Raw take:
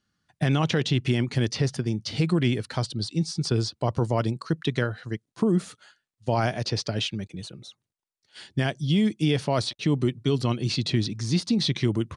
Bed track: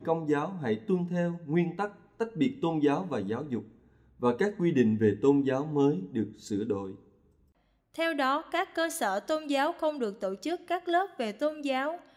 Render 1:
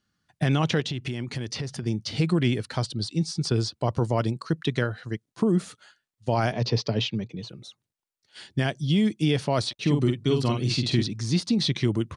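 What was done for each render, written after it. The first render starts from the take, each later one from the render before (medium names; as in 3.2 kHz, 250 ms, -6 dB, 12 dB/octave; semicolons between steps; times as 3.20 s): 0.80–1.83 s: compression 5:1, threshold -27 dBFS; 6.52–7.49 s: cabinet simulation 120–5700 Hz, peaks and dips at 120 Hz +9 dB, 230 Hz +5 dB, 450 Hz +6 dB, 990 Hz +6 dB, 1.5 kHz -6 dB; 9.80–11.03 s: doubling 48 ms -5 dB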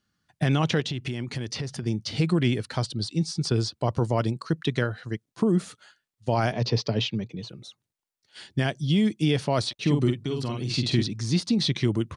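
10.13–10.74 s: compression 2.5:1, threshold -27 dBFS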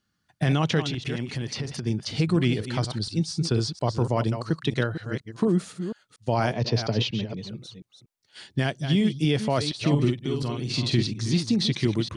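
chunks repeated in reverse 237 ms, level -9 dB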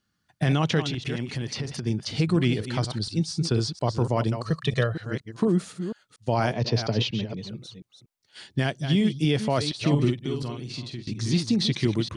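4.45–4.93 s: comb 1.7 ms, depth 70%; 10.16–11.07 s: fade out, to -21 dB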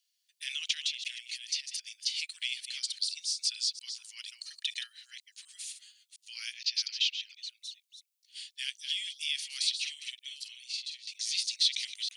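steep high-pass 2.4 kHz 36 dB/octave; treble shelf 5.5 kHz +5.5 dB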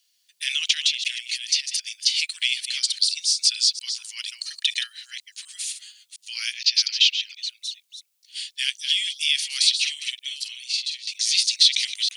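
trim +11.5 dB; peak limiter -3 dBFS, peak gain reduction 1.5 dB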